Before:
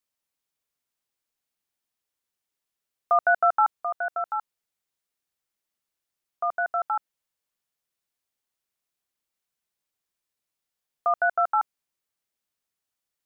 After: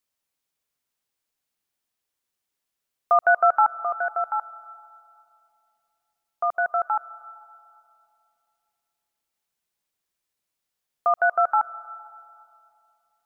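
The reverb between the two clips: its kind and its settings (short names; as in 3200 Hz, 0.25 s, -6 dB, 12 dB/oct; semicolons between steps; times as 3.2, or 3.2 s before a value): digital reverb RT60 2.7 s, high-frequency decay 0.4×, pre-delay 0.11 s, DRR 19.5 dB; gain +2.5 dB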